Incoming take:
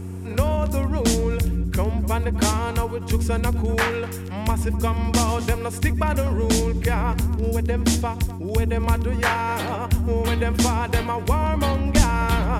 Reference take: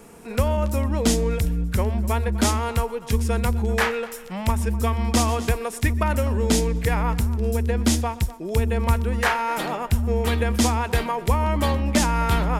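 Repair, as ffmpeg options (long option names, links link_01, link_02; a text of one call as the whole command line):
ffmpeg -i in.wav -filter_complex "[0:a]bandreject=frequency=92.2:width_type=h:width=4,bandreject=frequency=184.4:width_type=h:width=4,bandreject=frequency=276.6:width_type=h:width=4,bandreject=frequency=368.8:width_type=h:width=4,asplit=3[link_01][link_02][link_03];[link_01]afade=type=out:start_time=11.96:duration=0.02[link_04];[link_02]highpass=frequency=140:width=0.5412,highpass=frequency=140:width=1.3066,afade=type=in:start_time=11.96:duration=0.02,afade=type=out:start_time=12.08:duration=0.02[link_05];[link_03]afade=type=in:start_time=12.08:duration=0.02[link_06];[link_04][link_05][link_06]amix=inputs=3:normalize=0" out.wav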